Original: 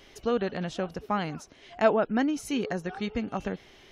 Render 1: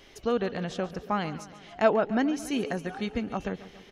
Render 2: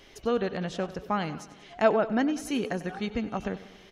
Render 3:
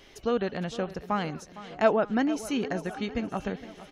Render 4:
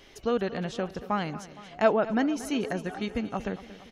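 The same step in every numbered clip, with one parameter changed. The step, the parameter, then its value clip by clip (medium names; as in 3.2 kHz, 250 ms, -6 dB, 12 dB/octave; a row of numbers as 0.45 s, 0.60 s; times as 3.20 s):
feedback delay, time: 141 ms, 95 ms, 459 ms, 232 ms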